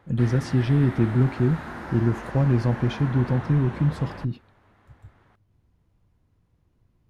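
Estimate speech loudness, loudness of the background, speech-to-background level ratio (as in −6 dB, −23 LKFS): −23.5 LKFS, −36.5 LKFS, 13.0 dB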